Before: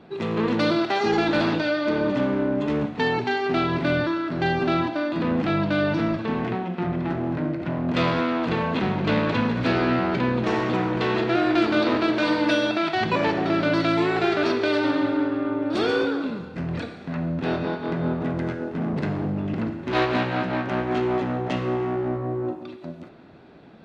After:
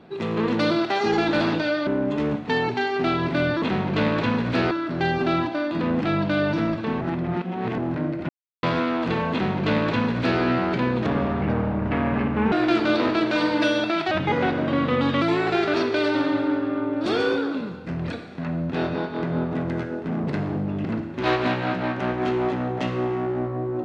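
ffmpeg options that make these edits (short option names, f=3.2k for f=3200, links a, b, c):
-filter_complex "[0:a]asplit=12[a][b][c][d][e][f][g][h][i][j][k][l];[a]atrim=end=1.872[m];[b]atrim=start=2.368:end=4.122[n];[c]atrim=start=8.728:end=9.822[o];[d]atrim=start=4.118:end=6.422[p];[e]atrim=start=6.418:end=7.192,asetpts=PTS-STARTPTS,areverse[q];[f]atrim=start=7.188:end=7.7,asetpts=PTS-STARTPTS,afade=t=out:st=0.508:d=0.004:c=hsin[r];[g]atrim=start=7.7:end=8.04,asetpts=PTS-STARTPTS,volume=0[s];[h]atrim=start=8.04:end=10.474,asetpts=PTS-STARTPTS,afade=t=in:d=0.004:c=hsin[t];[i]atrim=start=10.47:end=11.39,asetpts=PTS-STARTPTS,asetrate=27783,aresample=44100[u];[j]atrim=start=11.386:end=12.984[v];[k]atrim=start=12.98:end=13.91,asetpts=PTS-STARTPTS,asetrate=37044,aresample=44100[w];[l]atrim=start=13.906[x];[m][n]acrossfade=d=0.004:c1=hsin:c2=hsin[y];[y][o]acrossfade=d=0.004:c1=hsin:c2=hsin[z];[z][p]acrossfade=d=0.004:c1=hsin:c2=hsin[aa];[aa][q]acrossfade=d=0.004:c1=hsin:c2=hsin[ab];[r][s][t]concat=n=3:v=0:a=1[ac];[ab][ac]acrossfade=d=0.004:c1=hsin:c2=hsin[ad];[ad][u]acrossfade=d=0.004:c1=hsin:c2=hsin[ae];[ae][v]acrossfade=d=0.004:c1=hsin:c2=hsin[af];[af][w]acrossfade=d=0.004:c1=hsin:c2=hsin[ag];[ag][x]acrossfade=d=0.004:c1=hsin:c2=hsin"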